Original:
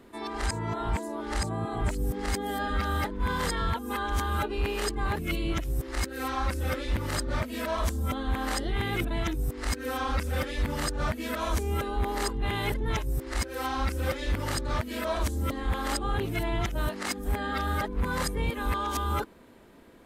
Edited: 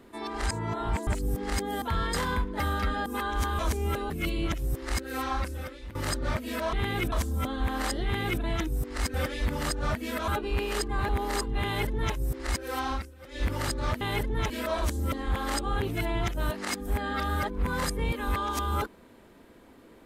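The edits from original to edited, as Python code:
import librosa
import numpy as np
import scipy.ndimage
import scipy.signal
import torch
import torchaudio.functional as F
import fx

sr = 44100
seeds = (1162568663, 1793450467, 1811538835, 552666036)

y = fx.edit(x, sr, fx.cut(start_s=1.07, length_s=0.76),
    fx.reverse_span(start_s=2.58, length_s=1.24),
    fx.swap(start_s=4.35, length_s=0.81, other_s=11.45, other_length_s=0.51),
    fx.fade_out_to(start_s=6.39, length_s=0.62, curve='qua', floor_db=-14.0),
    fx.duplicate(start_s=8.7, length_s=0.39, to_s=7.79),
    fx.cut(start_s=9.81, length_s=0.5),
    fx.duplicate(start_s=12.52, length_s=0.49, to_s=14.88),
    fx.fade_down_up(start_s=13.78, length_s=0.52, db=-23.5, fade_s=0.26, curve='qua'), tone=tone)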